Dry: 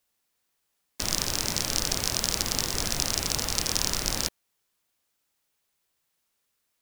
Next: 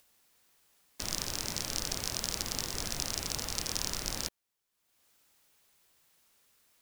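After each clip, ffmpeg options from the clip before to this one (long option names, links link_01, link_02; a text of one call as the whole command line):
ffmpeg -i in.wav -af "acompressor=mode=upward:threshold=-46dB:ratio=2.5,volume=-7.5dB" out.wav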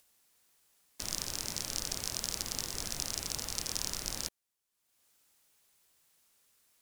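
ffmpeg -i in.wav -af "equalizer=frequency=9500:width_type=o:width=1.6:gain=4.5,volume=-4dB" out.wav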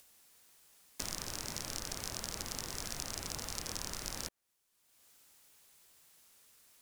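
ffmpeg -i in.wav -filter_complex "[0:a]acrossover=split=880|2100[link_01][link_02][link_03];[link_01]acompressor=threshold=-51dB:ratio=4[link_04];[link_02]acompressor=threshold=-57dB:ratio=4[link_05];[link_03]acompressor=threshold=-44dB:ratio=4[link_06];[link_04][link_05][link_06]amix=inputs=3:normalize=0,volume=6dB" out.wav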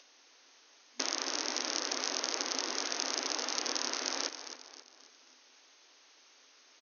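ffmpeg -i in.wav -filter_complex "[0:a]asplit=6[link_01][link_02][link_03][link_04][link_05][link_06];[link_02]adelay=267,afreqshift=-52,volume=-10.5dB[link_07];[link_03]adelay=534,afreqshift=-104,volume=-17.6dB[link_08];[link_04]adelay=801,afreqshift=-156,volume=-24.8dB[link_09];[link_05]adelay=1068,afreqshift=-208,volume=-31.9dB[link_10];[link_06]adelay=1335,afreqshift=-260,volume=-39dB[link_11];[link_01][link_07][link_08][link_09][link_10][link_11]amix=inputs=6:normalize=0,afftfilt=real='re*between(b*sr/4096,240,6600)':imag='im*between(b*sr/4096,240,6600)':win_size=4096:overlap=0.75,volume=8dB" out.wav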